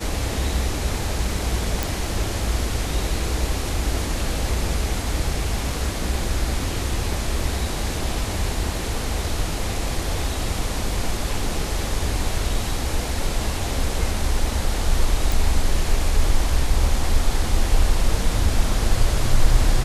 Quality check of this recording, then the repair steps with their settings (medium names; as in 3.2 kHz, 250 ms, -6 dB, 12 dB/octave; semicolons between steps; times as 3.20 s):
1.83 s: pop
15.32 s: pop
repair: de-click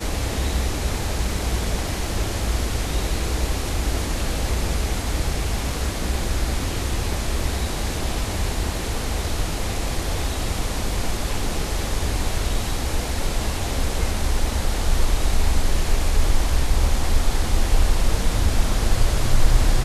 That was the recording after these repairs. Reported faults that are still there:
nothing left